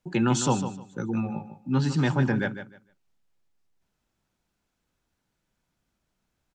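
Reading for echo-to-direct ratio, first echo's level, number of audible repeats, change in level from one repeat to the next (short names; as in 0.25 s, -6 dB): -10.5 dB, -10.5 dB, 2, -13.5 dB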